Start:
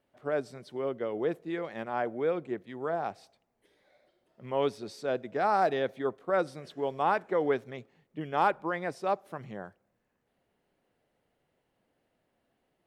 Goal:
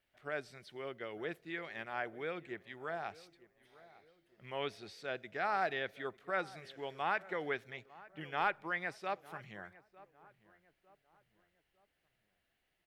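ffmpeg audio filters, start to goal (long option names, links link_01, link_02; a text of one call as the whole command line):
ffmpeg -i in.wav -filter_complex "[0:a]equalizer=frequency=125:width_type=o:width=1:gain=-8,equalizer=frequency=250:width_type=o:width=1:gain=-12,equalizer=frequency=500:width_type=o:width=1:gain=-10,equalizer=frequency=1000:width_type=o:width=1:gain=-9,equalizer=frequency=2000:width_type=o:width=1:gain=3,equalizer=frequency=8000:width_type=o:width=1:gain=-4,acrossover=split=3600[link_01][link_02];[link_02]acompressor=threshold=-59dB:ratio=4:attack=1:release=60[link_03];[link_01][link_03]amix=inputs=2:normalize=0,asplit=2[link_04][link_05];[link_05]adelay=903,lowpass=frequency=1500:poles=1,volume=-19dB,asplit=2[link_06][link_07];[link_07]adelay=903,lowpass=frequency=1500:poles=1,volume=0.43,asplit=2[link_08][link_09];[link_09]adelay=903,lowpass=frequency=1500:poles=1,volume=0.43[link_10];[link_04][link_06][link_08][link_10]amix=inputs=4:normalize=0,volume=1.5dB" out.wav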